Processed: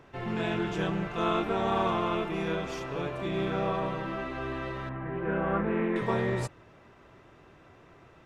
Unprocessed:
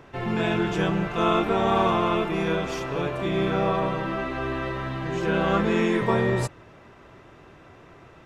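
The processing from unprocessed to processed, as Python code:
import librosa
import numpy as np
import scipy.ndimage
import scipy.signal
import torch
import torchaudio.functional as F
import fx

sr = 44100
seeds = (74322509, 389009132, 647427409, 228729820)

y = fx.lowpass(x, sr, hz=2100.0, slope=24, at=(4.89, 5.96))
y = fx.doppler_dist(y, sr, depth_ms=0.1)
y = y * librosa.db_to_amplitude(-6.0)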